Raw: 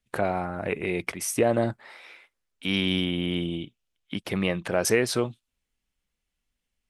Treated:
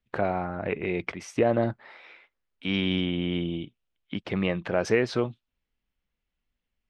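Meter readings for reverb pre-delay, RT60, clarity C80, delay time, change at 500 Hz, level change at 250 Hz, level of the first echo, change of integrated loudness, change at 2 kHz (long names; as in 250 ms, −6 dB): no reverb audible, no reverb audible, no reverb audible, no echo audible, −0.5 dB, 0.0 dB, no echo audible, −1.0 dB, −2.0 dB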